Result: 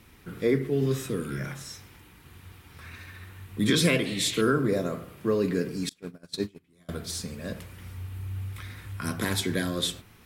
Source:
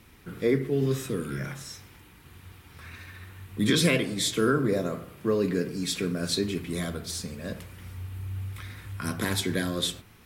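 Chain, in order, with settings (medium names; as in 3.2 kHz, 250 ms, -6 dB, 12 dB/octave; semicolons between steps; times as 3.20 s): 4.05–4.42 s: painted sound noise 1.8–4.4 kHz -39 dBFS; 5.89–6.89 s: gate -25 dBFS, range -31 dB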